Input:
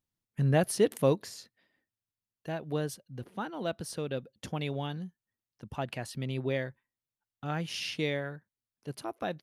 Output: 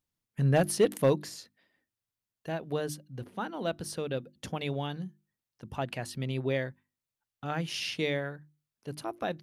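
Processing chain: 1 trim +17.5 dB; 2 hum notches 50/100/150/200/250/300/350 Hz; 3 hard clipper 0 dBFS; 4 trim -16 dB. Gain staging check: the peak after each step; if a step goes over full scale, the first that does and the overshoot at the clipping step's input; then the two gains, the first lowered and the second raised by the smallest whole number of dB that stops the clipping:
+4.0 dBFS, +4.5 dBFS, 0.0 dBFS, -16.0 dBFS; step 1, 4.5 dB; step 1 +12.5 dB, step 4 -11 dB

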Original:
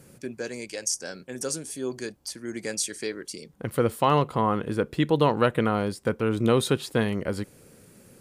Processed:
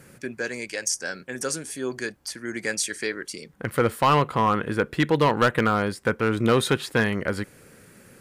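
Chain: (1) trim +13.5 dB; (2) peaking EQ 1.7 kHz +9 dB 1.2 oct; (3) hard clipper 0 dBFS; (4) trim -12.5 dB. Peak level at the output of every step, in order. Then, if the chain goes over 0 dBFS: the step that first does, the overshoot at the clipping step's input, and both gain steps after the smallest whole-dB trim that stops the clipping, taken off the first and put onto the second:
+5.5 dBFS, +10.0 dBFS, 0.0 dBFS, -12.5 dBFS; step 1, 10.0 dB; step 1 +3.5 dB, step 4 -2.5 dB

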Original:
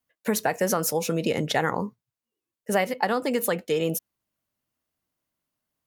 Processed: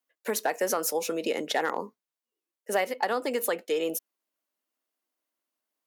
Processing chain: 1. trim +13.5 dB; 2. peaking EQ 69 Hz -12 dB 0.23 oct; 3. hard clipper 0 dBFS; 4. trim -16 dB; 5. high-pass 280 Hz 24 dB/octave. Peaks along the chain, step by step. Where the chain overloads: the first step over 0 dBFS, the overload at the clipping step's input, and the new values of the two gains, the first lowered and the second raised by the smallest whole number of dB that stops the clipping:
+5.0 dBFS, +5.0 dBFS, 0.0 dBFS, -16.0 dBFS, -12.0 dBFS; step 1, 5.0 dB; step 1 +8.5 dB, step 4 -11 dB

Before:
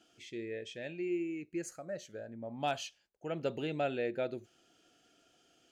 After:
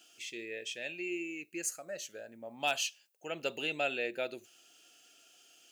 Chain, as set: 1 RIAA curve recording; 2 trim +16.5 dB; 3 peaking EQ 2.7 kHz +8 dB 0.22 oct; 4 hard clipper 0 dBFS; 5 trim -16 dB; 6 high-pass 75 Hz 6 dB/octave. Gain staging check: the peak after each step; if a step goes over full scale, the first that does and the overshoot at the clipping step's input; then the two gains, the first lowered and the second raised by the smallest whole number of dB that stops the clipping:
-18.5 dBFS, -2.0 dBFS, -1.5 dBFS, -1.5 dBFS, -17.5 dBFS, -17.5 dBFS; nothing clips

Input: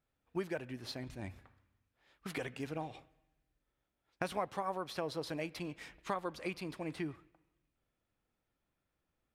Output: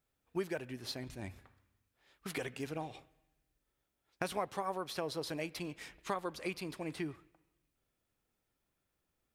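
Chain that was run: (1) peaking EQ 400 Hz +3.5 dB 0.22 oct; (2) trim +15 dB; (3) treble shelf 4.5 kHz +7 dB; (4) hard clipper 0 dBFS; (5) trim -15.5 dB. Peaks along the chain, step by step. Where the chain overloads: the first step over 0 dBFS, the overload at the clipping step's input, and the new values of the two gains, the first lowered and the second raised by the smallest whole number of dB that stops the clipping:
-18.0 dBFS, -3.0 dBFS, -2.5 dBFS, -2.5 dBFS, -18.0 dBFS; nothing clips

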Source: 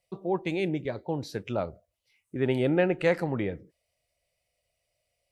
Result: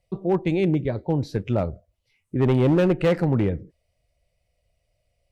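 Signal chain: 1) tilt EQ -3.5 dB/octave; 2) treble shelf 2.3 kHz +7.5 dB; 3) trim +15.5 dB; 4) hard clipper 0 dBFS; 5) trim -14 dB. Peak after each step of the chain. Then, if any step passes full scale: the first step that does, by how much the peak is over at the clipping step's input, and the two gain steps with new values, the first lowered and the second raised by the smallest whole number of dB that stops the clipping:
-8.0 dBFS, -7.5 dBFS, +8.0 dBFS, 0.0 dBFS, -14.0 dBFS; step 3, 8.0 dB; step 3 +7.5 dB, step 5 -6 dB

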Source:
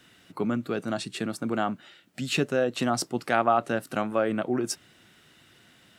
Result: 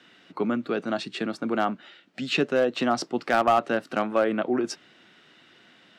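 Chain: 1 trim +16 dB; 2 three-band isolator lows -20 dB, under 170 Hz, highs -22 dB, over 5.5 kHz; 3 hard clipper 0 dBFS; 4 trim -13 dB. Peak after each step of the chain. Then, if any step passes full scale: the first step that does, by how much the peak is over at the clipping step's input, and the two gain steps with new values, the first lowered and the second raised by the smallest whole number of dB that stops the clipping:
+8.0 dBFS, +7.0 dBFS, 0.0 dBFS, -13.0 dBFS; step 1, 7.0 dB; step 1 +9 dB, step 4 -6 dB

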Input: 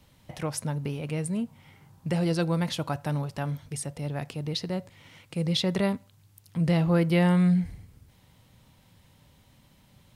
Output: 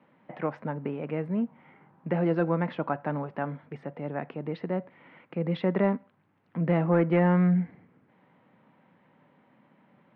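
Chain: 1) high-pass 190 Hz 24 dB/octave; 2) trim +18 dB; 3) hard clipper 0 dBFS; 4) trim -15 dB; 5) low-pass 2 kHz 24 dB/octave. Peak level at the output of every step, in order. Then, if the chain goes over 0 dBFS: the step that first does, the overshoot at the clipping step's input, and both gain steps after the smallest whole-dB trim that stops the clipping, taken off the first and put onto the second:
-12.5 dBFS, +5.5 dBFS, 0.0 dBFS, -15.0 dBFS, -14.0 dBFS; step 2, 5.5 dB; step 2 +12 dB, step 4 -9 dB

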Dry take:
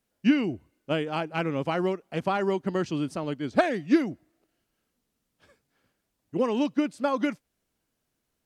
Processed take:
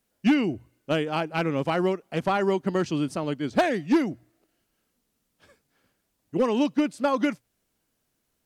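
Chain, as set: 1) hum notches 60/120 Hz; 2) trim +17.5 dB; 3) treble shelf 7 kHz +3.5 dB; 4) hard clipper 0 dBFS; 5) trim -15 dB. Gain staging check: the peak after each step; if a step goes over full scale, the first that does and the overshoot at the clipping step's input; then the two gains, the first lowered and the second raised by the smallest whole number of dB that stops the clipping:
-9.5 dBFS, +8.0 dBFS, +8.0 dBFS, 0.0 dBFS, -15.0 dBFS; step 2, 8.0 dB; step 2 +9.5 dB, step 5 -7 dB

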